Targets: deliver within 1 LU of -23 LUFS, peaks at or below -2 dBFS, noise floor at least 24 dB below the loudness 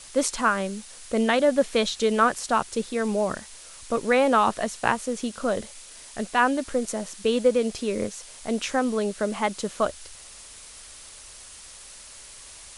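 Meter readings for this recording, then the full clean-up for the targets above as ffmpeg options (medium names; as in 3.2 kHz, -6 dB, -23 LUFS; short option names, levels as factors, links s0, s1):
noise floor -45 dBFS; noise floor target -49 dBFS; loudness -25.0 LUFS; peak level -5.0 dBFS; loudness target -23.0 LUFS
-> -af "afftdn=nr=6:nf=-45"
-af "volume=1.26"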